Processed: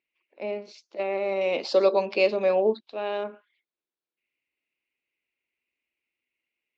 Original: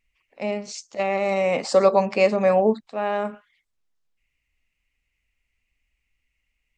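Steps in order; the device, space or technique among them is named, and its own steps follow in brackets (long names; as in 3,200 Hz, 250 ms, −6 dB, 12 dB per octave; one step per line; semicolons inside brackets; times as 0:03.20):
0:01.41–0:03.24: flat-topped bell 4,500 Hz +10 dB
phone earpiece (loudspeaker in its box 330–3,900 Hz, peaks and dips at 350 Hz +9 dB, 770 Hz −5 dB, 1,200 Hz −6 dB, 1,900 Hz −7 dB, 3,000 Hz −4 dB)
level −3 dB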